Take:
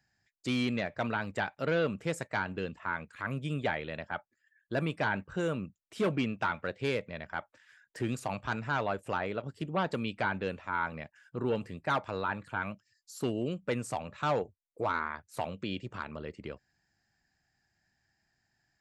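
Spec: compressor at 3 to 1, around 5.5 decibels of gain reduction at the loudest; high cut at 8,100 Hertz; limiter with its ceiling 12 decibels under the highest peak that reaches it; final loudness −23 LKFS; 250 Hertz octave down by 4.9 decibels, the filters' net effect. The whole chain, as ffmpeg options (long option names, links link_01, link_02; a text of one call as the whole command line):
ffmpeg -i in.wav -af "lowpass=8100,equalizer=frequency=250:width_type=o:gain=-6.5,acompressor=threshold=-34dB:ratio=3,volume=22.5dB,alimiter=limit=-11.5dB:level=0:latency=1" out.wav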